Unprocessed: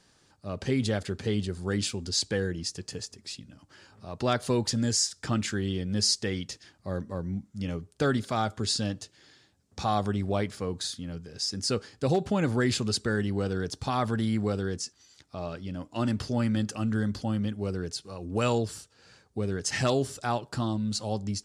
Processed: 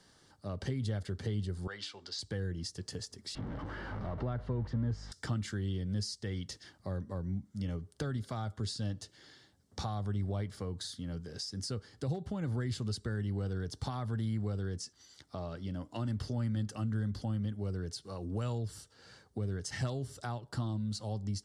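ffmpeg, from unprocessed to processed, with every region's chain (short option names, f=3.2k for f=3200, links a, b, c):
-filter_complex "[0:a]asettb=1/sr,asplit=3[a][b][c];[a]atrim=end=1.674[d];[b]atrim=start=1.67:end=2.19,asetpts=PTS-STARTPTS,afade=t=in:d=0.004:c=qsin,afade=t=out:st=0.516:d=0.004:c=qsin,acrossover=split=580 5200:gain=0.0708 1 0.0891[e][f][g];[e][f][g]amix=inputs=3:normalize=0,bandreject=f=60:t=h:w=6,bandreject=f=120:t=h:w=6,bandreject=f=180:t=h:w=6,bandreject=f=240:t=h:w=6,bandreject=f=300:t=h:w=6,bandreject=f=360:t=h:w=6,bandreject=f=420:t=h:w=6[h];[c]atrim=start=2.186[i];[d][h]acrossfade=d=0.004:c1=hsin:c2=qsin[j];[j][i]acrossfade=d=0.004:c1=qsin:c2=hsin,asettb=1/sr,asplit=3[k][l][m];[k]atrim=end=3.354[n];[l]atrim=start=3.35:end=5.12,asetpts=PTS-STARTPTS,afade=t=in:d=0.004:c=qsin,afade=t=out:st=1.766:d=0.004:c=qsin,aeval=exprs='val(0)+0.5*0.02*sgn(val(0))':c=same,lowpass=1.7k,aeval=exprs='val(0)+0.00562*(sin(2*PI*50*n/s)+sin(2*PI*2*50*n/s)/2+sin(2*PI*3*50*n/s)/3+sin(2*PI*4*50*n/s)/4+sin(2*PI*5*50*n/s)/5)':c=same[o];[m]atrim=start=5.116[p];[n][o]acrossfade=d=0.004:c1=hsin:c2=qsin[q];[q][p]acrossfade=d=0.004:c1=qsin:c2=hsin,equalizer=f=6.9k:t=o:w=0.31:g=-3.5,bandreject=f=2.5k:w=5.8,acrossover=split=130[r][s];[s]acompressor=threshold=-39dB:ratio=6[t];[r][t]amix=inputs=2:normalize=0"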